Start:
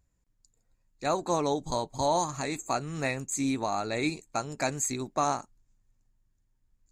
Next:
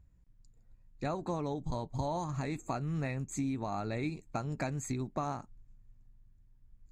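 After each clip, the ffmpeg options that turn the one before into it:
-af "bass=f=250:g=11,treble=f=4000:g=-10,acompressor=threshold=0.0224:ratio=4"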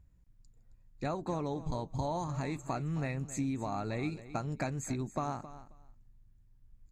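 -af "aecho=1:1:268|536:0.178|0.0302"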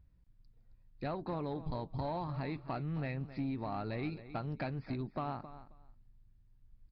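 -af "aeval=exprs='(tanh(22.4*val(0)+0.2)-tanh(0.2))/22.4':c=same,aresample=11025,aresample=44100,volume=0.841"

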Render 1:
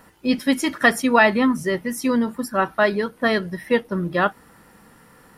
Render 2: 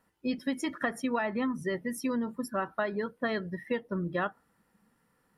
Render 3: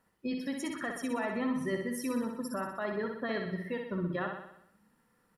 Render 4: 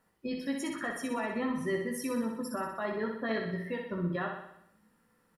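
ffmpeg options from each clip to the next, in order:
-filter_complex "[0:a]acrossover=split=1800[s0][s1];[s1]alimiter=limit=0.1:level=0:latency=1:release=228[s2];[s0][s2]amix=inputs=2:normalize=0,afftdn=nr=14:nf=-35,acompressor=threshold=0.1:ratio=6,volume=0.447"
-filter_complex "[0:a]alimiter=level_in=1.12:limit=0.0631:level=0:latency=1:release=88,volume=0.891,asplit=2[s0][s1];[s1]aecho=0:1:62|124|186|248|310|372|434|496:0.562|0.321|0.183|0.104|0.0594|0.0338|0.0193|0.011[s2];[s0][s2]amix=inputs=2:normalize=0,volume=0.841"
-filter_complex "[0:a]asplit=2[s0][s1];[s1]adelay=18,volume=0.501[s2];[s0][s2]amix=inputs=2:normalize=0"

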